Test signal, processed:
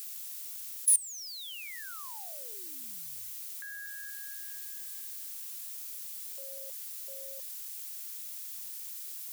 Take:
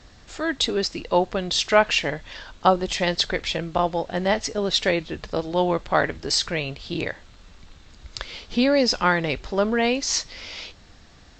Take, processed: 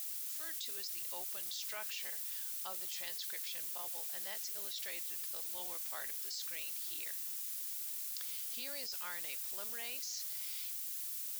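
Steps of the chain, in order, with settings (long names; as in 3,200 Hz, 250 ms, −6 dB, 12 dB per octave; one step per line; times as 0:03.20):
bit-depth reduction 6 bits, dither triangular
first difference
output level in coarse steps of 21 dB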